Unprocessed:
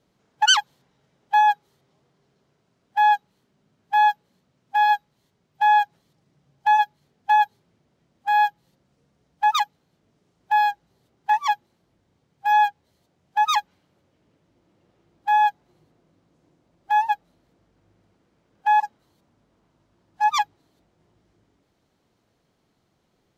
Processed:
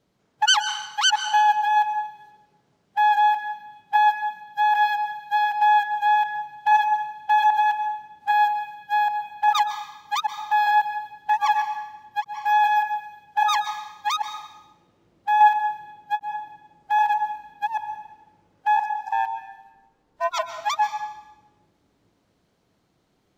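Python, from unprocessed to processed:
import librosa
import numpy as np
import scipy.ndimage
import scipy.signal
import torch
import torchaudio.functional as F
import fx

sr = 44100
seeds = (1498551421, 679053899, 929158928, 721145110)

y = fx.reverse_delay(x, sr, ms=395, wet_db=-1.5)
y = fx.ring_mod(y, sr, carrier_hz=fx.line((18.75, 37.0), (20.42, 200.0)), at=(18.75, 20.42), fade=0.02)
y = fx.rev_plate(y, sr, seeds[0], rt60_s=1.0, hf_ratio=0.95, predelay_ms=110, drr_db=9.0)
y = fx.end_taper(y, sr, db_per_s=600.0)
y = y * 10.0 ** (-1.5 / 20.0)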